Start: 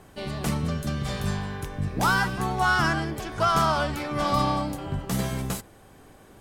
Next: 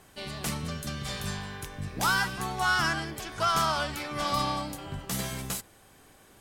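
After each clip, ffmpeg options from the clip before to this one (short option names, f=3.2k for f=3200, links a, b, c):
-af "tiltshelf=f=1.4k:g=-5,volume=-3dB"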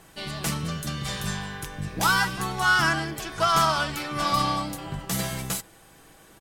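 -af "aecho=1:1:6.1:0.36,volume=3.5dB"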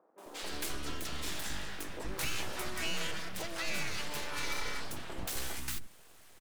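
-filter_complex "[0:a]acompressor=threshold=-26dB:ratio=6,aeval=exprs='abs(val(0))':c=same,acrossover=split=280|970[a][b][c];[c]adelay=180[d];[a]adelay=260[e];[e][b][d]amix=inputs=3:normalize=0,volume=-3dB"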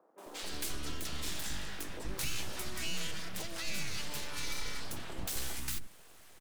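-filter_complex "[0:a]acrossover=split=260|3000[a][b][c];[b]acompressor=threshold=-46dB:ratio=6[d];[a][d][c]amix=inputs=3:normalize=0,volume=1dB"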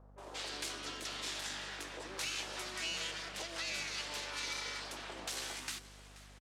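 -af "highpass=400,lowpass=6.9k,aeval=exprs='val(0)+0.00112*(sin(2*PI*50*n/s)+sin(2*PI*2*50*n/s)/2+sin(2*PI*3*50*n/s)/3+sin(2*PI*4*50*n/s)/4+sin(2*PI*5*50*n/s)/5)':c=same,aecho=1:1:480:0.119,volume=1.5dB"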